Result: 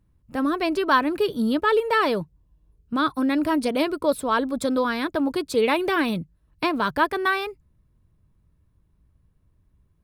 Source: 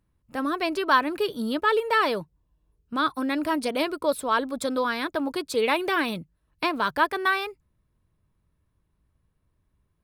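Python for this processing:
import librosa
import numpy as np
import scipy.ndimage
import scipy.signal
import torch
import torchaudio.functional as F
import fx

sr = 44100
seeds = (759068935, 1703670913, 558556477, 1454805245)

y = fx.low_shelf(x, sr, hz=340.0, db=9.0)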